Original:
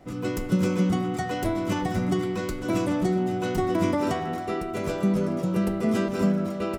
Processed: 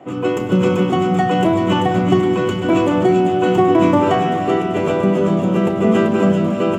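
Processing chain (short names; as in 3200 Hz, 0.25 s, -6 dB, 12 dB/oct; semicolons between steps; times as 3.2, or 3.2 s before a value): HPF 82 Hz; high shelf 3600 Hz -8 dB; thin delay 0.387 s, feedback 49%, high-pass 2700 Hz, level -4 dB; reverb RT60 3.6 s, pre-delay 3 ms, DRR 9.5 dB; gain +3.5 dB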